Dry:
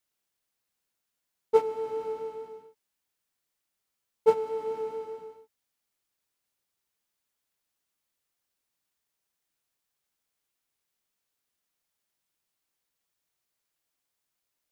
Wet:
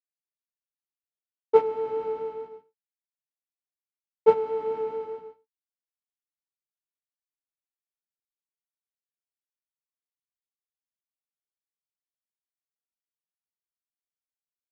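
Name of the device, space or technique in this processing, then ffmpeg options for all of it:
hearing-loss simulation: -af "lowpass=3000,agate=range=0.0224:threshold=0.0112:ratio=3:detection=peak,volume=1.5"

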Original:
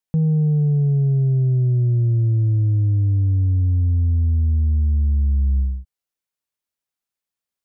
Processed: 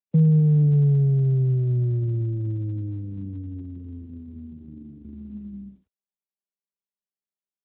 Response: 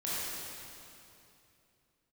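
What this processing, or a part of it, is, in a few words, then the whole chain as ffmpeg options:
mobile call with aggressive noise cancelling: -filter_complex "[0:a]asplit=3[s0][s1][s2];[s0]afade=t=out:st=0.94:d=0.02[s3];[s1]adynamicequalizer=threshold=0.00708:dfrequency=200:dqfactor=5.3:tfrequency=200:tqfactor=5.3:attack=5:release=100:ratio=0.375:range=3:mode=cutabove:tftype=bell,afade=t=in:st=0.94:d=0.02,afade=t=out:st=1.87:d=0.02[s4];[s2]afade=t=in:st=1.87:d=0.02[s5];[s3][s4][s5]amix=inputs=3:normalize=0,highpass=f=140:w=0.5412,highpass=f=140:w=1.3066,afftdn=nr=22:nf=-35,volume=1.41" -ar 8000 -c:a libopencore_amrnb -b:a 12200

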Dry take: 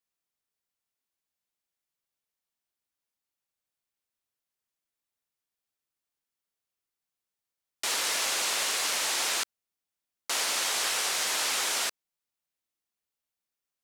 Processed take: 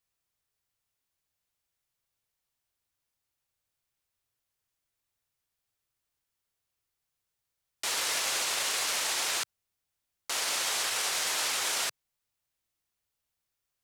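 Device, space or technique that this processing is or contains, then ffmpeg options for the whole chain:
car stereo with a boomy subwoofer: -af "lowshelf=f=150:t=q:w=1.5:g=7,alimiter=level_in=1.12:limit=0.0631:level=0:latency=1,volume=0.891,volume=1.58"

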